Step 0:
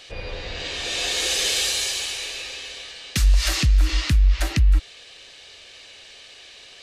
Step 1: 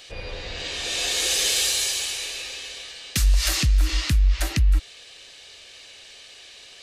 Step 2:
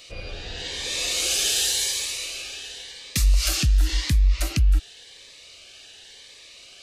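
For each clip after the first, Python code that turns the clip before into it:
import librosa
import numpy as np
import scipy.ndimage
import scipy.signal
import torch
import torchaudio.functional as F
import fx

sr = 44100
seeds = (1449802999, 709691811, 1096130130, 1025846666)

y1 = fx.high_shelf(x, sr, hz=7400.0, db=8.5)
y1 = y1 * librosa.db_to_amplitude(-2.0)
y2 = fx.notch_cascade(y1, sr, direction='rising', hz=0.92)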